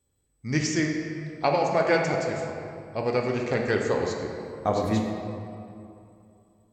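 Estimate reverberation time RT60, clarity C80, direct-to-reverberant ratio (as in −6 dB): 2.7 s, 4.0 dB, 0.5 dB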